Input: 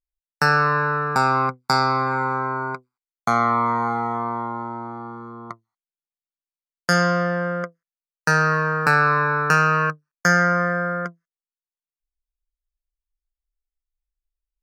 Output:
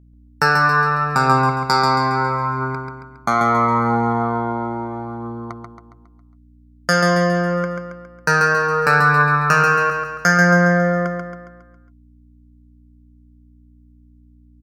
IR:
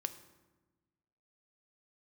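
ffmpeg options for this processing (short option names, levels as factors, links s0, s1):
-af "aphaser=in_gain=1:out_gain=1:delay=3.4:decay=0.33:speed=0.76:type=triangular,aeval=exprs='val(0)+0.00355*(sin(2*PI*60*n/s)+sin(2*PI*2*60*n/s)/2+sin(2*PI*3*60*n/s)/3+sin(2*PI*4*60*n/s)/4+sin(2*PI*5*60*n/s)/5)':c=same,aecho=1:1:137|274|411|548|685|822:0.562|0.276|0.135|0.0662|0.0324|0.0159,volume=1.19"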